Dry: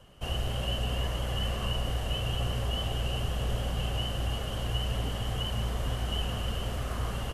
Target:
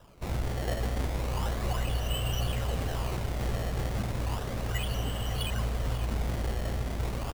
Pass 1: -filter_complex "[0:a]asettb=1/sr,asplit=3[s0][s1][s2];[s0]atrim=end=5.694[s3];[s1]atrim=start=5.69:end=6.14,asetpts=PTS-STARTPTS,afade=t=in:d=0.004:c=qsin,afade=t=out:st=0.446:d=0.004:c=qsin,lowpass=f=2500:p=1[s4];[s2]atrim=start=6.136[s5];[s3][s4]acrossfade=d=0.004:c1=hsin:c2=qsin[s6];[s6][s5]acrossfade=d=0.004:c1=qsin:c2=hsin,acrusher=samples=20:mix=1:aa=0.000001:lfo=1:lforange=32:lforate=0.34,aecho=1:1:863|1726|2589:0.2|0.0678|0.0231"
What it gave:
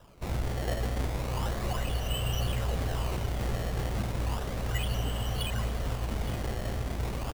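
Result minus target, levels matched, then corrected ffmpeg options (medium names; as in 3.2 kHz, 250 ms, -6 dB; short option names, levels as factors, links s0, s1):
echo 317 ms late
-filter_complex "[0:a]asettb=1/sr,asplit=3[s0][s1][s2];[s0]atrim=end=5.694[s3];[s1]atrim=start=5.69:end=6.14,asetpts=PTS-STARTPTS,afade=t=in:d=0.004:c=qsin,afade=t=out:st=0.446:d=0.004:c=qsin,lowpass=f=2500:p=1[s4];[s2]atrim=start=6.136[s5];[s3][s4]acrossfade=d=0.004:c1=hsin:c2=qsin[s6];[s6][s5]acrossfade=d=0.004:c1=qsin:c2=hsin,acrusher=samples=20:mix=1:aa=0.000001:lfo=1:lforange=32:lforate=0.34,aecho=1:1:546|1092|1638:0.2|0.0678|0.0231"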